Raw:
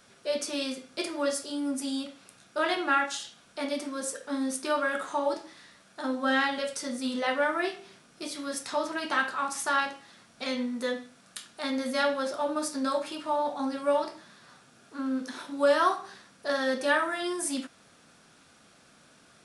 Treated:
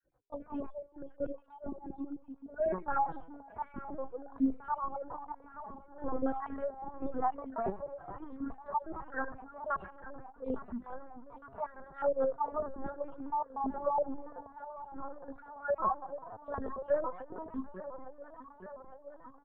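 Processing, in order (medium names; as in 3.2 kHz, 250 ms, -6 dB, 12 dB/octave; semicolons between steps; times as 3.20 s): random holes in the spectrogram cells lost 61%; Chebyshev low-pass 1 kHz, order 3; hum notches 50/100/150/200/250/300/350/400/450 Hz; spectral noise reduction 13 dB; bass shelf 440 Hz -2.5 dB; peak limiter -27 dBFS, peak gain reduction 11 dB; echo whose repeats swap between lows and highs 431 ms, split 830 Hz, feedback 86%, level -12 dB; on a send at -23 dB: reverberation RT60 5.6 s, pre-delay 30 ms; on the sum: LPC vocoder at 8 kHz pitch kept; endless flanger 3.3 ms -1 Hz; trim +6.5 dB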